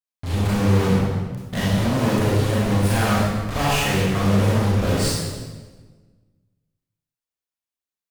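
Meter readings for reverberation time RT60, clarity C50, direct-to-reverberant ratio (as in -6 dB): 1.4 s, -3.5 dB, -8.5 dB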